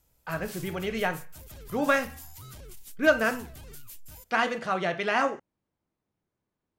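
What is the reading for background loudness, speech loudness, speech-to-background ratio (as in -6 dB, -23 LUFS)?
-45.5 LUFS, -28.0 LUFS, 17.5 dB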